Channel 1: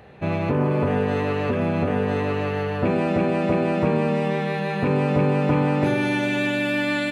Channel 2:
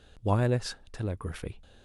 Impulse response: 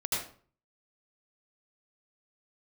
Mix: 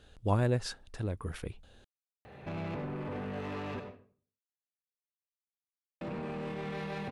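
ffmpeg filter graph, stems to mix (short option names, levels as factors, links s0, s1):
-filter_complex "[0:a]acompressor=threshold=0.0708:ratio=6,alimiter=limit=0.0794:level=0:latency=1:release=38,asoftclip=type=tanh:threshold=0.0299,adelay=2250,volume=0.473,asplit=3[s0][s1][s2];[s0]atrim=end=3.8,asetpts=PTS-STARTPTS,afade=t=out:st=3.796:d=0.004:c=hsin[s3];[s1]atrim=start=3.8:end=6.01,asetpts=PTS-STARTPTS,volume=0[s4];[s2]atrim=start=6.01,asetpts=PTS-STARTPTS,afade=t=in:d=0.004:c=hsin[s5];[s3][s4][s5]concat=n=3:v=0:a=1,asplit=2[s6][s7];[s7]volume=0.335[s8];[1:a]volume=0.75[s9];[2:a]atrim=start_sample=2205[s10];[s8][s10]afir=irnorm=-1:irlink=0[s11];[s6][s9][s11]amix=inputs=3:normalize=0"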